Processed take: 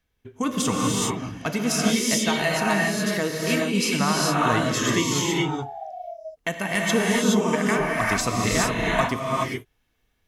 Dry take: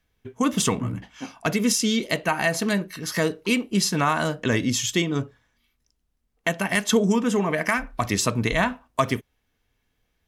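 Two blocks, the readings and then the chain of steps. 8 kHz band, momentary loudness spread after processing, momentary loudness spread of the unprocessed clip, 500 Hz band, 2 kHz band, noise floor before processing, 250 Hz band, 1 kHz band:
+1.5 dB, 9 LU, 8 LU, +1.0 dB, +1.5 dB, -73 dBFS, +0.5 dB, +2.5 dB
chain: painted sound fall, 4.40–5.92 s, 620–1300 Hz -37 dBFS; gated-style reverb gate 450 ms rising, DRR -3.5 dB; trim -3.5 dB

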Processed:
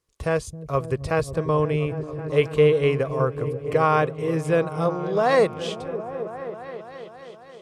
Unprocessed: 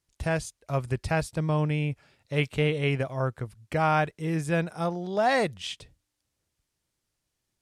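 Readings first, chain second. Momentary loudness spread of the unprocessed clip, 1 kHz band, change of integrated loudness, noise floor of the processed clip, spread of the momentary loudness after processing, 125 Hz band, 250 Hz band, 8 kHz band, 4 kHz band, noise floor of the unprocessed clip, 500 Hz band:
8 LU, +4.0 dB, +4.5 dB, -45 dBFS, 17 LU, +2.0 dB, +2.5 dB, no reading, 0.0 dB, -82 dBFS, +9.0 dB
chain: small resonant body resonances 460/1100 Hz, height 12 dB, ringing for 25 ms; on a send: delay with an opening low-pass 269 ms, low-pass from 200 Hz, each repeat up 1 oct, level -6 dB

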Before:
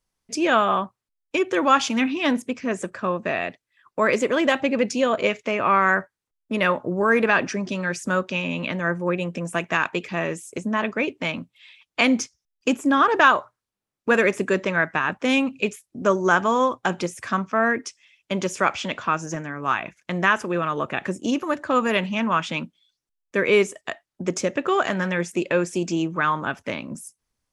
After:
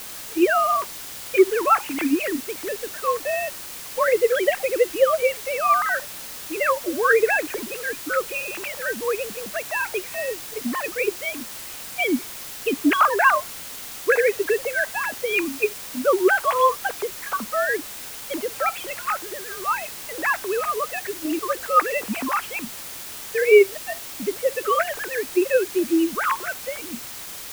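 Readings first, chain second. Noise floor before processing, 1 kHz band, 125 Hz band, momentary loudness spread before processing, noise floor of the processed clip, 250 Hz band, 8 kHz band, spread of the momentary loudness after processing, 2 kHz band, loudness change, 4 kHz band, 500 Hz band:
-84 dBFS, -0.5 dB, under -15 dB, 10 LU, -36 dBFS, -3.0 dB, +4.5 dB, 13 LU, -1.0 dB, 0.0 dB, -2.0 dB, +2.0 dB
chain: formants replaced by sine waves; word length cut 6-bit, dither triangular

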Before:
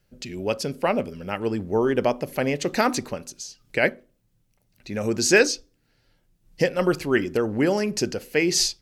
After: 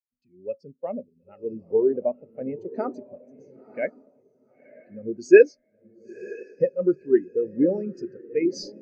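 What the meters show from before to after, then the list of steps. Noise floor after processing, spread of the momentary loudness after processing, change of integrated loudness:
-69 dBFS, 20 LU, 0.0 dB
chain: echo that smears into a reverb 967 ms, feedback 50%, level -5.5 dB; spectral contrast expander 2.5:1; trim +2.5 dB

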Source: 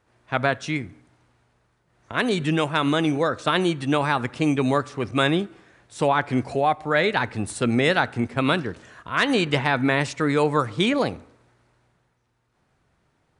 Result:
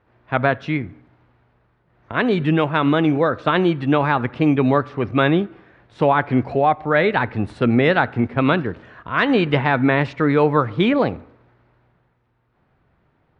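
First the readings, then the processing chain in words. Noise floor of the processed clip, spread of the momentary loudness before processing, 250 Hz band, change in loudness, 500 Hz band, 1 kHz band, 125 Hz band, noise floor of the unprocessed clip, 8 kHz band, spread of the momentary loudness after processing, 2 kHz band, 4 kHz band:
-64 dBFS, 7 LU, +5.0 dB, +4.0 dB, +4.5 dB, +4.0 dB, +5.5 dB, -68 dBFS, under -20 dB, 8 LU, +2.5 dB, -2.5 dB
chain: distance through air 350 m; trim +5.5 dB

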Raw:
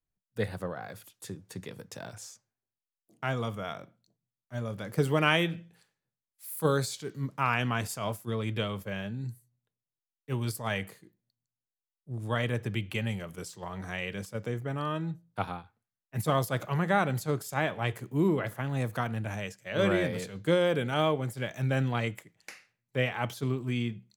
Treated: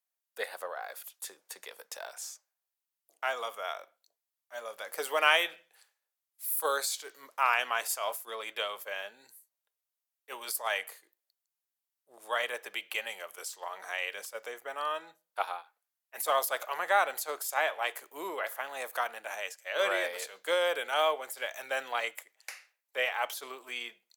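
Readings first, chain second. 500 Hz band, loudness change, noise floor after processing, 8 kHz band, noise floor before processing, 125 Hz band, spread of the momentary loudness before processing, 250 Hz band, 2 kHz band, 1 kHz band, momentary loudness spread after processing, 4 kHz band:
-3.0 dB, -1.5 dB, under -85 dBFS, +5.0 dB, under -85 dBFS, under -40 dB, 16 LU, -21.5 dB, +2.0 dB, +2.0 dB, 16 LU, +2.5 dB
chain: high-pass 580 Hz 24 dB/octave; peaking EQ 15 kHz +8.5 dB 0.86 oct; trim +2 dB

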